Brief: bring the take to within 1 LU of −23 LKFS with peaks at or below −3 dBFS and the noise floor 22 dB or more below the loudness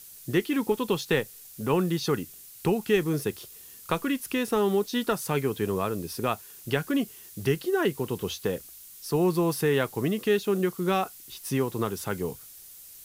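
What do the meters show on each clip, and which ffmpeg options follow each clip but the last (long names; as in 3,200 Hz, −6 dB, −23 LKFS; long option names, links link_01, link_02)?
background noise floor −48 dBFS; target noise floor −50 dBFS; integrated loudness −28.0 LKFS; sample peak −11.0 dBFS; target loudness −23.0 LKFS
→ -af "afftdn=noise_reduction=6:noise_floor=-48"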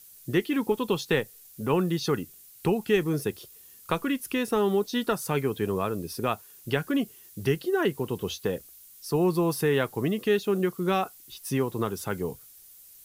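background noise floor −52 dBFS; integrated loudness −28.0 LKFS; sample peak −11.0 dBFS; target loudness −23.0 LKFS
→ -af "volume=5dB"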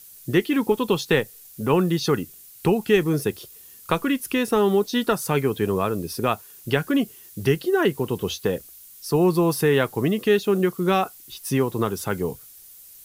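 integrated loudness −23.0 LKFS; sample peak −6.0 dBFS; background noise floor −47 dBFS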